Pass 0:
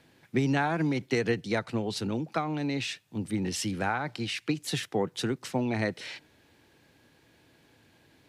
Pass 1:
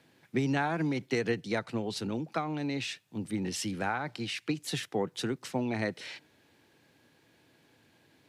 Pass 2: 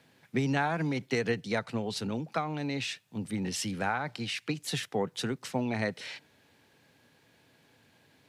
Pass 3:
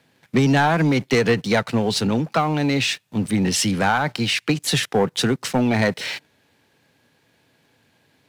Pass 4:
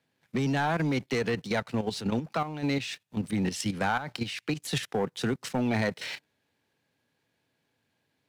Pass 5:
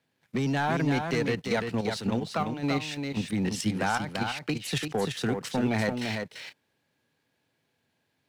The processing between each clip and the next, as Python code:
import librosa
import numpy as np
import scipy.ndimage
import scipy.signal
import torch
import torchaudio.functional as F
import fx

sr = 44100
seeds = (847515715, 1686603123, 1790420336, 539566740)

y1 = scipy.signal.sosfilt(scipy.signal.butter(2, 100.0, 'highpass', fs=sr, output='sos'), x)
y1 = y1 * 10.0 ** (-2.5 / 20.0)
y2 = fx.peak_eq(y1, sr, hz=330.0, db=-7.0, octaves=0.32)
y2 = y2 * 10.0 ** (1.5 / 20.0)
y3 = fx.leveller(y2, sr, passes=2)
y3 = y3 * 10.0 ** (6.0 / 20.0)
y4 = fx.level_steps(y3, sr, step_db=10)
y4 = y4 * 10.0 ** (-6.5 / 20.0)
y5 = y4 + 10.0 ** (-5.5 / 20.0) * np.pad(y4, (int(341 * sr / 1000.0), 0))[:len(y4)]